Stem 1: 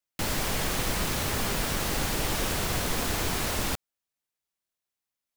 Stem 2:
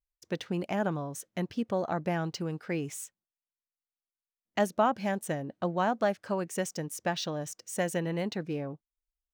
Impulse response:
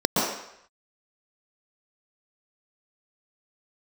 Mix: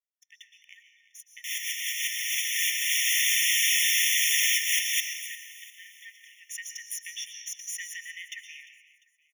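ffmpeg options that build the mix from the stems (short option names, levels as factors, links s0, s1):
-filter_complex "[0:a]adelay=1250,volume=1.06,asplit=3[s0][s1][s2];[s1]volume=0.0794[s3];[s2]volume=0.158[s4];[1:a]aeval=exprs='if(lt(val(0),0),0.447*val(0),val(0))':c=same,acrossover=split=160[s5][s6];[s6]acompressor=threshold=0.0141:ratio=10[s7];[s5][s7]amix=inputs=2:normalize=0,volume=0.75,asplit=4[s8][s9][s10][s11];[s9]volume=0.141[s12];[s10]volume=0.141[s13];[s11]apad=whole_len=291532[s14];[s0][s14]sidechaincompress=threshold=0.00708:ratio=8:attack=22:release=131[s15];[2:a]atrim=start_sample=2205[s16];[s3][s12]amix=inputs=2:normalize=0[s17];[s17][s16]afir=irnorm=-1:irlink=0[s18];[s4][s13]amix=inputs=2:normalize=0,aecho=0:1:349|698|1047|1396|1745|2094:1|0.43|0.185|0.0795|0.0342|0.0147[s19];[s15][s8][s18][s19]amix=inputs=4:normalize=0,dynaudnorm=f=630:g=7:m=4.47,afftfilt=real='re*eq(mod(floor(b*sr/1024/1800),2),1)':imag='im*eq(mod(floor(b*sr/1024/1800),2),1)':win_size=1024:overlap=0.75"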